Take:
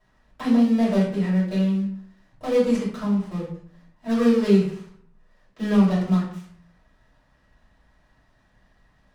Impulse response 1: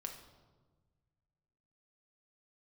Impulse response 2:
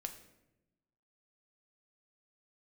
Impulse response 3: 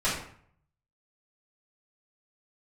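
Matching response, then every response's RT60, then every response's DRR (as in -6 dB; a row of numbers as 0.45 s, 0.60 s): 3; 1.4 s, 0.95 s, 0.60 s; 2.0 dB, 5.0 dB, -10.5 dB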